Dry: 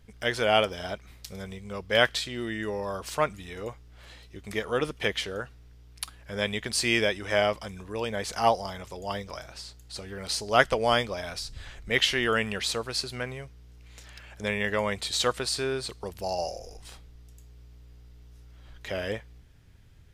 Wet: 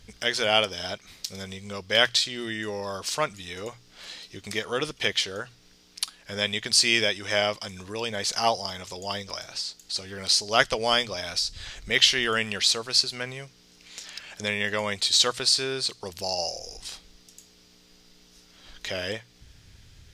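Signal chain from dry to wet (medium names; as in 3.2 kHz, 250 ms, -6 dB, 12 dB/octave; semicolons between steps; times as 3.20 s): peaking EQ 5.1 kHz +12.5 dB 1.8 oct; hum notches 60/120 Hz; in parallel at +1 dB: compression, threshold -42 dBFS, peak gain reduction 28 dB; on the sum: trim -3 dB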